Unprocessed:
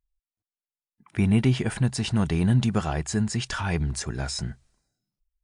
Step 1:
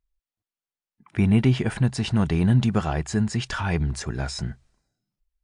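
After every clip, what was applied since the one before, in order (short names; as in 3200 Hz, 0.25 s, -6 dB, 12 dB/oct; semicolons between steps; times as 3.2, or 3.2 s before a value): high shelf 6500 Hz -9.5 dB; gain +2 dB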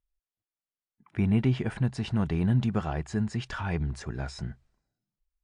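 high shelf 4600 Hz -9.5 dB; gain -5.5 dB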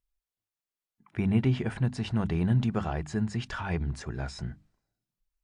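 notches 50/100/150/200/250/300 Hz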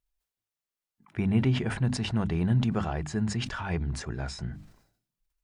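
sustainer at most 92 dB/s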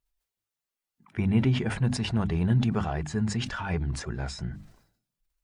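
bin magnitudes rounded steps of 15 dB; gain +1.5 dB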